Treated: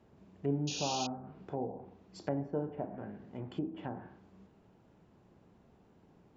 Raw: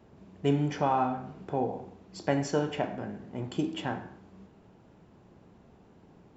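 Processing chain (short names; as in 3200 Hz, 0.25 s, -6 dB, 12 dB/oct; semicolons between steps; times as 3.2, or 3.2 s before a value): treble ducked by the level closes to 750 Hz, closed at -28 dBFS; painted sound noise, 0.67–1.07, 2400–6900 Hz -33 dBFS; gain -6.5 dB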